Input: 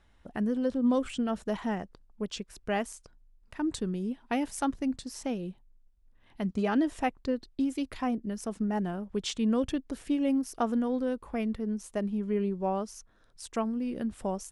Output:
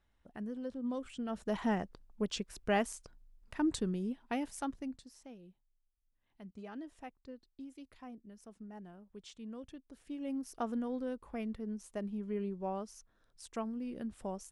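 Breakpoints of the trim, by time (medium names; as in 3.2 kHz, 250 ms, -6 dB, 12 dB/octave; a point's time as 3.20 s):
1.10 s -12 dB
1.65 s -0.5 dB
3.60 s -0.5 dB
4.83 s -10 dB
5.24 s -19 dB
9.85 s -19 dB
10.51 s -8 dB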